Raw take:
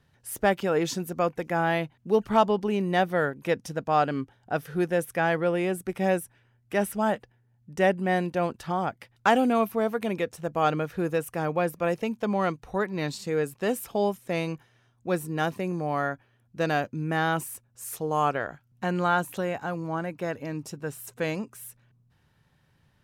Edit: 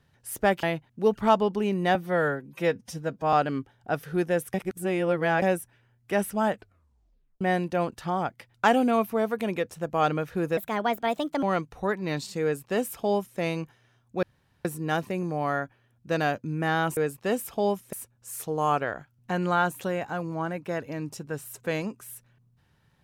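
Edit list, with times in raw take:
0.63–1.71 cut
3.03–3.95 stretch 1.5×
5.16–6.04 reverse
7.14 tape stop 0.89 s
11.19–12.34 speed 134%
13.34–14.3 copy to 17.46
15.14 insert room tone 0.42 s

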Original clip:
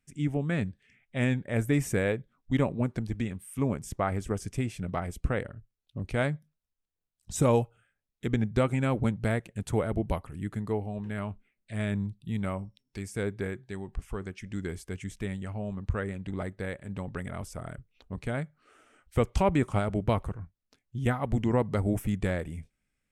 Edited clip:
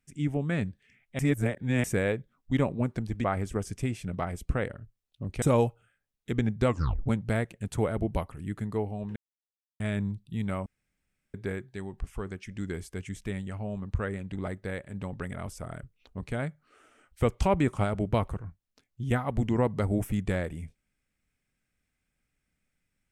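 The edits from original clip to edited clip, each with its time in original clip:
1.19–1.84 reverse
3.24–3.99 cut
6.17–7.37 cut
8.62 tape stop 0.39 s
11.11–11.75 mute
12.61–13.29 room tone

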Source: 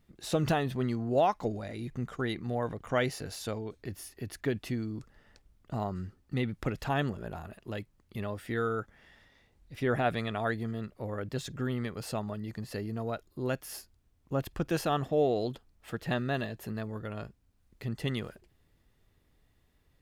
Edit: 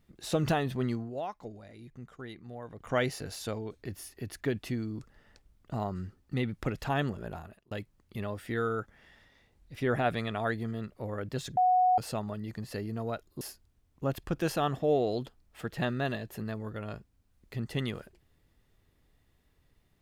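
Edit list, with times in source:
0.94–2.89 dip -11 dB, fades 0.18 s
7.34–7.71 fade out
11.57–11.98 bleep 735 Hz -20.5 dBFS
13.41–13.7 cut

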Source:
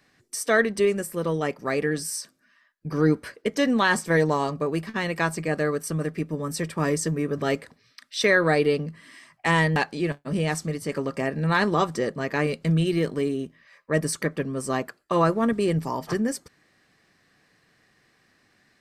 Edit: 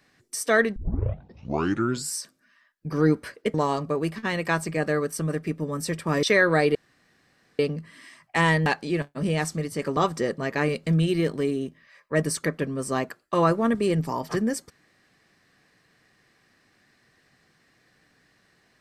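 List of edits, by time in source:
0.76 tape start 1.40 s
3.54–4.25 cut
6.94–8.17 cut
8.69 insert room tone 0.84 s
11.07–11.75 cut

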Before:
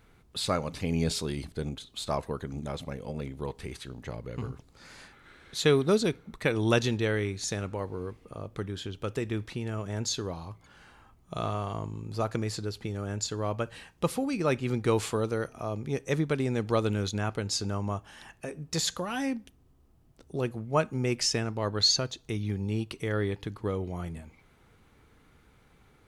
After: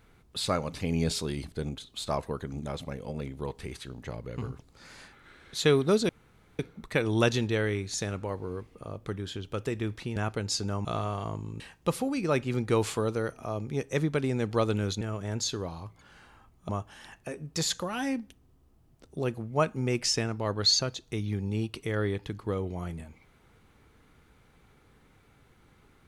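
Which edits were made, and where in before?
6.09 insert room tone 0.50 s
9.66–11.34 swap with 17.17–17.86
12.09–13.76 cut

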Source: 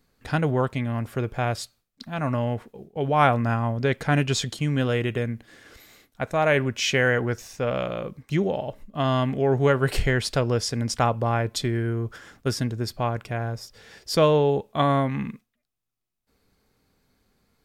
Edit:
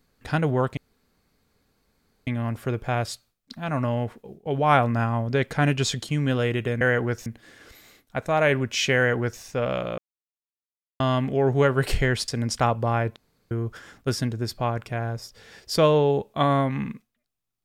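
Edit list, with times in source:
0.77 insert room tone 1.50 s
7.01–7.46 copy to 5.31
8.03–9.05 mute
10.33–10.67 cut
11.55–11.9 room tone

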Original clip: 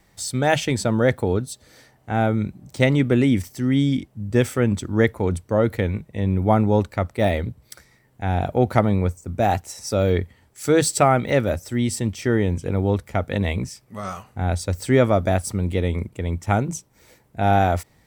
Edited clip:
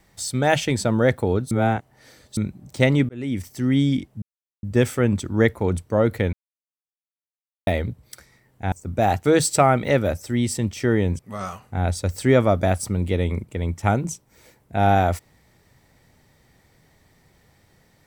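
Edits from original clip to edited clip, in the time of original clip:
1.51–2.37 reverse
3.09–3.61 fade in
4.22 insert silence 0.41 s
5.92–7.26 mute
8.31–9.13 cut
9.66–10.67 cut
12.61–13.83 cut

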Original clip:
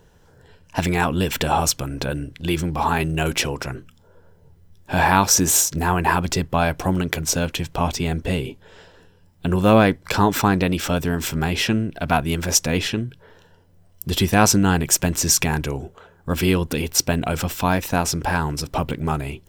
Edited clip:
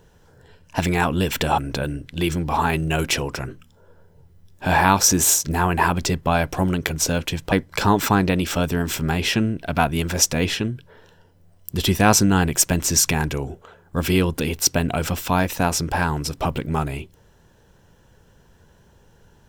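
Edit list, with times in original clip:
1.58–1.85 cut
7.79–9.85 cut

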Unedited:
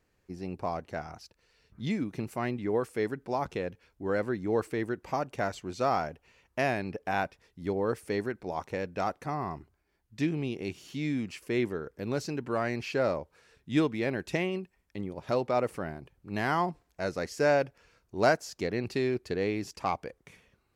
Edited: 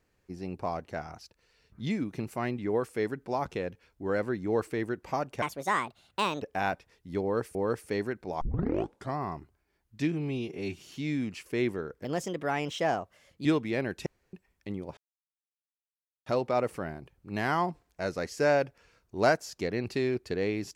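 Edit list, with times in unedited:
5.42–6.94 speed 152%
7.74–8.07 loop, 2 plays
8.6 tape start 0.76 s
10.31–10.76 stretch 1.5×
12.01–13.74 speed 123%
14.35–14.62 room tone
15.26 insert silence 1.29 s

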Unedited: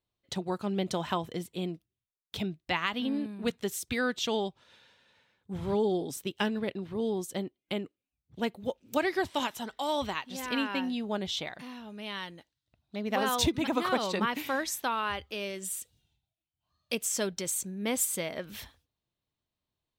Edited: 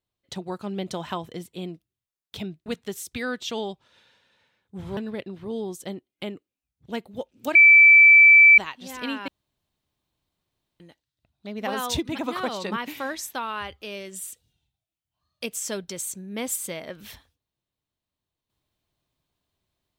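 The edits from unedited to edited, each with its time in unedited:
2.66–3.42 cut
5.73–6.46 cut
9.04–10.07 bleep 2320 Hz -8.5 dBFS
10.77–12.29 room tone

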